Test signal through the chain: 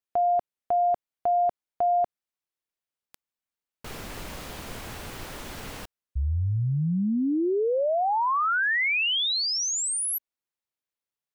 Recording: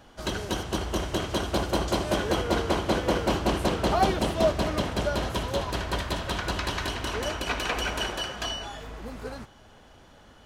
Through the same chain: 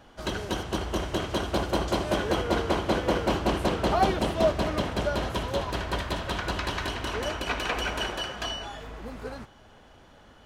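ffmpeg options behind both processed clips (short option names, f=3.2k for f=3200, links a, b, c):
-af "bass=f=250:g=-1,treble=f=4k:g=-4"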